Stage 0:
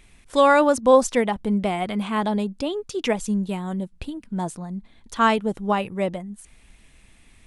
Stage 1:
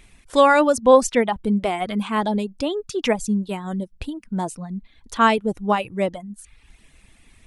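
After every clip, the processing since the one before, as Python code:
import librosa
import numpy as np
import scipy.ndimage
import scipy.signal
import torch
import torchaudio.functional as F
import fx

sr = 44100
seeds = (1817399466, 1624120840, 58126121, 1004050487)

y = fx.dereverb_blind(x, sr, rt60_s=0.7)
y = F.gain(torch.from_numpy(y), 2.5).numpy()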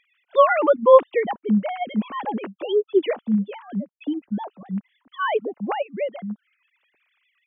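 y = fx.sine_speech(x, sr)
y = F.gain(torch.from_numpy(y), -1.0).numpy()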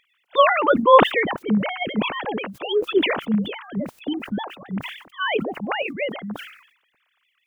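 y = fx.spec_clip(x, sr, under_db=16)
y = fx.sustainer(y, sr, db_per_s=85.0)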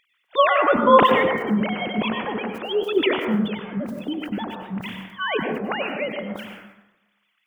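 y = fx.rev_plate(x, sr, seeds[0], rt60_s=0.97, hf_ratio=0.35, predelay_ms=85, drr_db=3.5)
y = F.gain(torch.from_numpy(y), -2.0).numpy()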